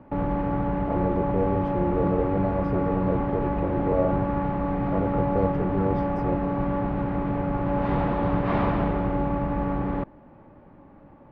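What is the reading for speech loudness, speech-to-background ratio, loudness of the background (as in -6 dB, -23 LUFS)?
-29.5 LUFS, -3.0 dB, -26.5 LUFS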